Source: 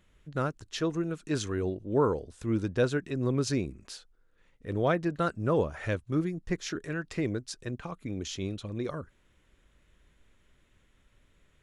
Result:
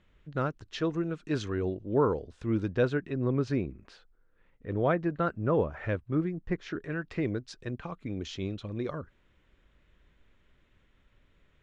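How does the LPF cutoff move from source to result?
2.66 s 3900 Hz
3.27 s 2300 Hz
6.65 s 2300 Hz
7.48 s 4000 Hz

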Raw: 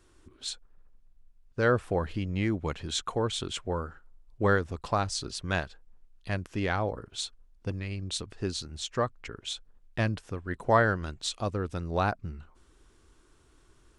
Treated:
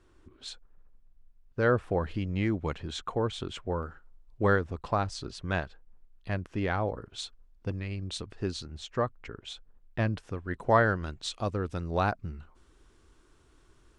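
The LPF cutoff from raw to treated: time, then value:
LPF 6 dB/oct
2500 Hz
from 2.02 s 4400 Hz
from 2.78 s 2000 Hz
from 3.83 s 4600 Hz
from 4.56 s 2300 Hz
from 6.88 s 3600 Hz
from 8.66 s 2000 Hz
from 10.13 s 4500 Hz
from 11.41 s 7200 Hz

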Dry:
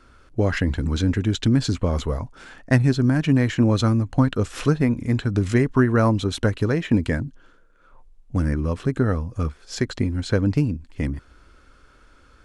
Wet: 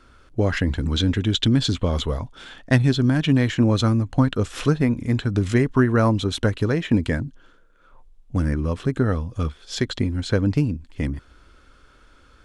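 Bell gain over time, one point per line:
bell 3400 Hz 0.42 oct
+3 dB
from 0.91 s +12 dB
from 3.49 s +4 dB
from 9.12 s +11.5 dB
from 9.99 s +4 dB

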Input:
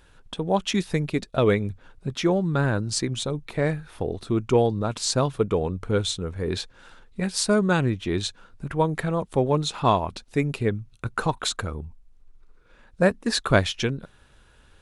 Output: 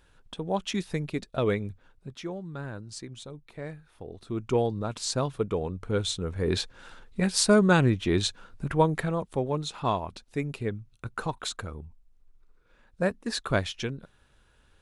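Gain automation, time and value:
1.62 s -6 dB
2.31 s -14.5 dB
4.03 s -14.5 dB
4.5 s -5.5 dB
5.82 s -5.5 dB
6.52 s +1 dB
8.75 s +1 dB
9.44 s -7 dB

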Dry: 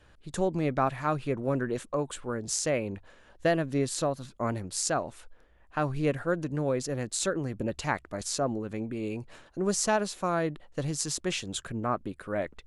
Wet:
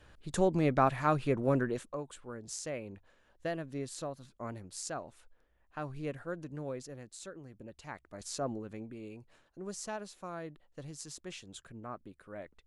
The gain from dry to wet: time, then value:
1.58 s 0 dB
2.04 s -11 dB
6.71 s -11 dB
7.15 s -17.5 dB
7.79 s -17.5 dB
8.47 s -6 dB
9.2 s -14 dB

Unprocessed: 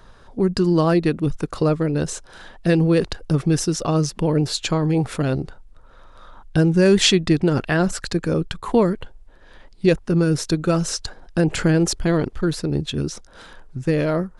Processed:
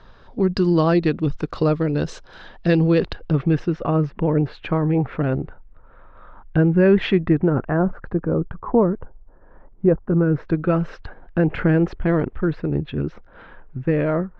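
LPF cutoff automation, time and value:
LPF 24 dB/oct
2.83 s 4800 Hz
3.86 s 2300 Hz
7.06 s 2300 Hz
7.79 s 1300 Hz
9.98 s 1300 Hz
10.65 s 2400 Hz

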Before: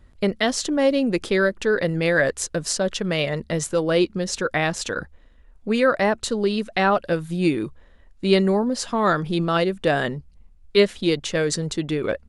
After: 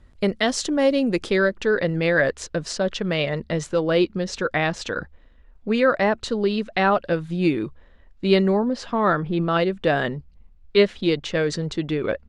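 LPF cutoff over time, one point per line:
1.06 s 9500 Hz
1.75 s 4700 Hz
8.48 s 4700 Hz
9.31 s 2100 Hz
9.66 s 4400 Hz

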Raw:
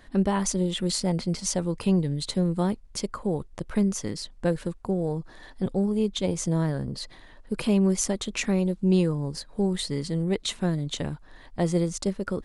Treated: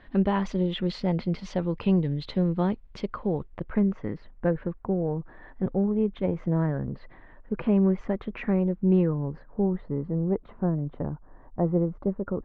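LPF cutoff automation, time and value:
LPF 24 dB/oct
3.3 s 3300 Hz
3.83 s 2000 Hz
9.09 s 2000 Hz
9.96 s 1200 Hz

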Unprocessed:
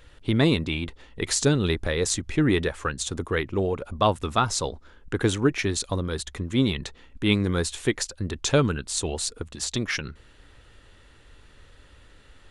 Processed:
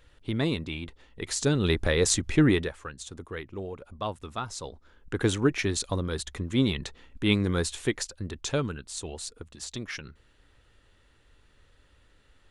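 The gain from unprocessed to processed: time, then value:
1.3 s -7 dB
1.8 s +1.5 dB
2.44 s +1.5 dB
2.84 s -11.5 dB
4.55 s -11.5 dB
5.27 s -2 dB
7.65 s -2 dB
8.82 s -9 dB

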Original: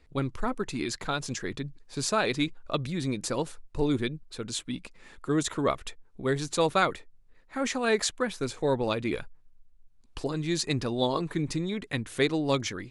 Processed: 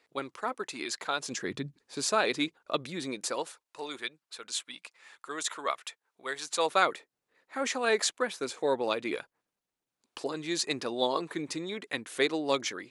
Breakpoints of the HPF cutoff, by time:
1.12 s 480 Hz
1.57 s 130 Hz
2.03 s 300 Hz
2.94 s 300 Hz
3.79 s 860 Hz
6.4 s 860 Hz
6.86 s 360 Hz

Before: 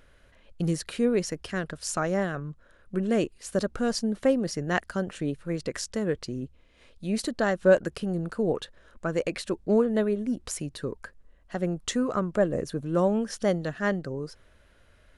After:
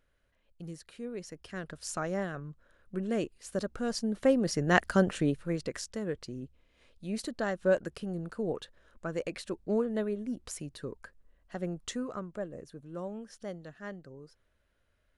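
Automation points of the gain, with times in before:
1.08 s -16 dB
1.75 s -6.5 dB
3.82 s -6.5 dB
5.01 s +5 dB
5.9 s -7 dB
11.81 s -7 dB
12.54 s -15.5 dB

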